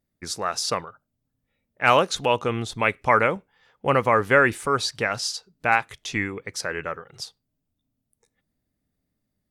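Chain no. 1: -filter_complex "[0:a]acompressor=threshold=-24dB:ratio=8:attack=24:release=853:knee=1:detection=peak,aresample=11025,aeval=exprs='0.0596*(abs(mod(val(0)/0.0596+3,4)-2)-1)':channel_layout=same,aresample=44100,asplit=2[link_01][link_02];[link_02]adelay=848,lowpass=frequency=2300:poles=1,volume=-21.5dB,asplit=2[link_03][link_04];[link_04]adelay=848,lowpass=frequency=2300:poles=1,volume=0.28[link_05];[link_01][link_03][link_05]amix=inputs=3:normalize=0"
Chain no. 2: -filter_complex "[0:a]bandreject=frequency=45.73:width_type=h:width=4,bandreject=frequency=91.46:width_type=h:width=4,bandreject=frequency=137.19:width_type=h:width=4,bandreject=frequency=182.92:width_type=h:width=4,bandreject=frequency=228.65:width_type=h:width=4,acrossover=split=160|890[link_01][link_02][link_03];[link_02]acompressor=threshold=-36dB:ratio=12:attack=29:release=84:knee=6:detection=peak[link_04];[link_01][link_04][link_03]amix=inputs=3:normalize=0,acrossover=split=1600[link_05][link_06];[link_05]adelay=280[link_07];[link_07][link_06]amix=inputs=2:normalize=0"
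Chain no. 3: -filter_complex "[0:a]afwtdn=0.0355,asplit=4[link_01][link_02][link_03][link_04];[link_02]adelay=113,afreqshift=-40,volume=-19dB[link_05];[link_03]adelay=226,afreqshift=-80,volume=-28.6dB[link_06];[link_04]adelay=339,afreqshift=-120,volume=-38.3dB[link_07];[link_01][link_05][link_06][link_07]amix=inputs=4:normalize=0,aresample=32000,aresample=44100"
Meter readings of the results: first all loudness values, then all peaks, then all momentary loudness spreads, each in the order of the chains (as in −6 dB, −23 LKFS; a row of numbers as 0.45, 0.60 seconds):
−33.5, −27.5, −23.5 LKFS; −20.0, −10.0, −3.5 dBFS; 6, 11, 14 LU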